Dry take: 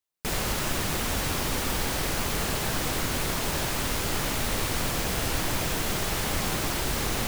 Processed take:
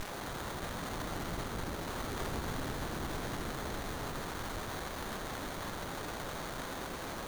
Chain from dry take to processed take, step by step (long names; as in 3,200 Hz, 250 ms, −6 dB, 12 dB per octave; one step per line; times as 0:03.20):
source passing by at 0:01.94, 39 m/s, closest 5.8 metres
inverse Chebyshev band-stop filter 900–2,100 Hz, stop band 60 dB
in parallel at −2 dB: bit-depth reduction 6 bits, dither triangular
on the sum: wave folding −30 dBFS
on a send: echo with a time of its own for lows and highs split 520 Hz, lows 662 ms, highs 82 ms, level −3.5 dB
on the sum: windowed peak hold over 17 samples